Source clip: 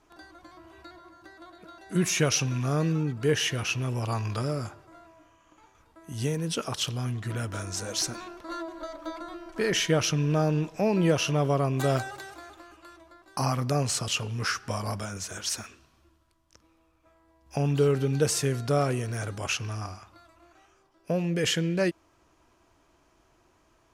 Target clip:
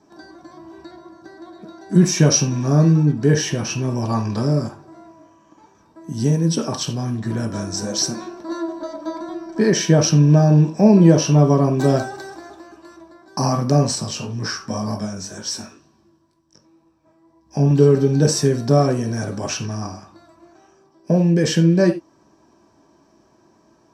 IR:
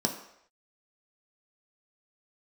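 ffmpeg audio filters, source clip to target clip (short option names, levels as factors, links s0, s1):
-filter_complex "[1:a]atrim=start_sample=2205,atrim=end_sample=4410[s0];[0:a][s0]afir=irnorm=-1:irlink=0,asettb=1/sr,asplit=3[s1][s2][s3];[s1]atrim=end=13.954[s4];[s2]atrim=start=13.95:end=17.71,asetpts=PTS-STARTPTS,afade=t=in:d=0.004:c=qsin,afade=t=out:st=3.756:d=0.004:c=qsin,flanger=delay=17.5:depth=4.4:speed=2[s5];[s3]atrim=start=17.706[s6];[s4][s5]acrossfade=d=0.004:c1=hsin:c2=qsin[s7];[s7][s6]acrossfade=d=0.004:c1=qsin:c2=hsin,volume=0.75"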